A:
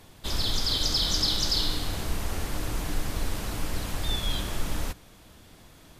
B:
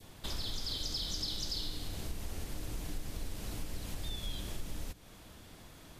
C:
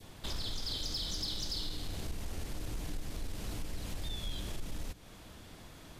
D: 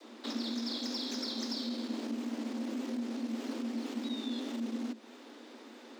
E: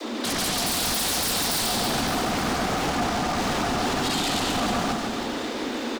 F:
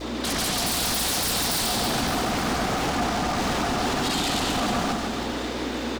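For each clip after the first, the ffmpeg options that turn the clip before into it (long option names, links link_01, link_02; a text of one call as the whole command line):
ffmpeg -i in.wav -af "adynamicequalizer=threshold=0.00447:dfrequency=1200:dqfactor=0.81:tfrequency=1200:tqfactor=0.81:attack=5:release=100:ratio=0.375:range=3.5:mode=cutabove:tftype=bell,acompressor=threshold=-37dB:ratio=2.5,volume=-1.5dB" out.wav
ffmpeg -i in.wav -af "highshelf=frequency=11000:gain=-6,asoftclip=type=tanh:threshold=-30.5dB,volume=2dB" out.wav
ffmpeg -i in.wav -filter_complex "[0:a]acrossover=split=300|6900[link_01][link_02][link_03];[link_03]acrusher=samples=12:mix=1:aa=0.000001:lfo=1:lforange=7.2:lforate=1.7[link_04];[link_01][link_02][link_04]amix=inputs=3:normalize=0,afreqshift=220" out.wav
ffmpeg -i in.wav -filter_complex "[0:a]aeval=exprs='0.0631*sin(PI/2*7.08*val(0)/0.0631)':channel_layout=same,asplit=2[link_01][link_02];[link_02]aecho=0:1:140|322|558.6|866.2|1266:0.631|0.398|0.251|0.158|0.1[link_03];[link_01][link_03]amix=inputs=2:normalize=0" out.wav
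ffmpeg -i in.wav -af "aeval=exprs='val(0)+0.0112*(sin(2*PI*60*n/s)+sin(2*PI*2*60*n/s)/2+sin(2*PI*3*60*n/s)/3+sin(2*PI*4*60*n/s)/4+sin(2*PI*5*60*n/s)/5)':channel_layout=same" out.wav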